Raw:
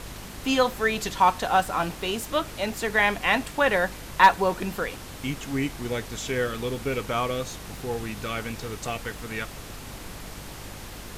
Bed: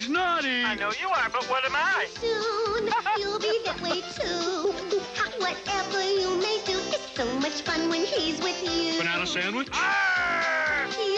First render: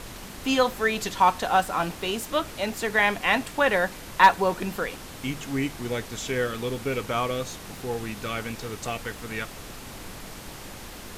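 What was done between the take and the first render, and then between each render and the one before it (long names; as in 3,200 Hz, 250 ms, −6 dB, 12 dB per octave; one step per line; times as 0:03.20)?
hum removal 50 Hz, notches 3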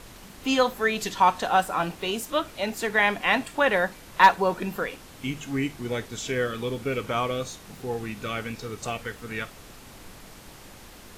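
noise reduction from a noise print 6 dB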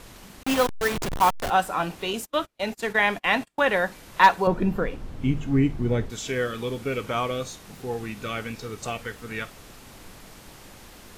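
0:00.43–0:01.50: hold until the input has moved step −22 dBFS
0:02.13–0:03.75: noise gate −35 dBFS, range −34 dB
0:04.47–0:06.10: spectral tilt −3.5 dB per octave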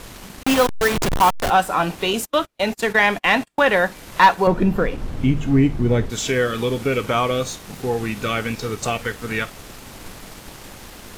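in parallel at −1 dB: downward compressor, threshold −29 dBFS, peak gain reduction 17.5 dB
on the sum: leveller curve on the samples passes 1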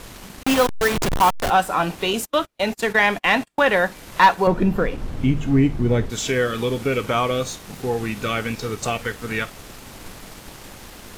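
level −1 dB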